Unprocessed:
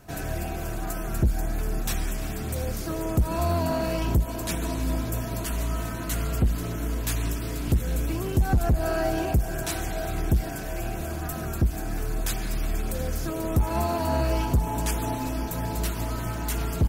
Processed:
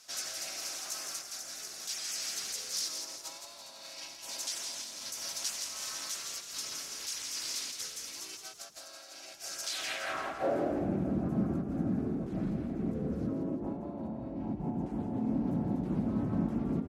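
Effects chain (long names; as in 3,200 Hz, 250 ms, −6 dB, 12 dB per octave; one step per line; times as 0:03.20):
low-shelf EQ 130 Hz −9 dB
compressor whose output falls as the input rises −34 dBFS, ratio −1
pitch-shifted copies added −3 semitones 0 dB
band-pass filter sweep 5,400 Hz → 200 Hz, 0:09.66–0:10.84
on a send: echo with shifted repeats 167 ms, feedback 44%, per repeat +33 Hz, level −6.5 dB
on the sum: level +5.5 dB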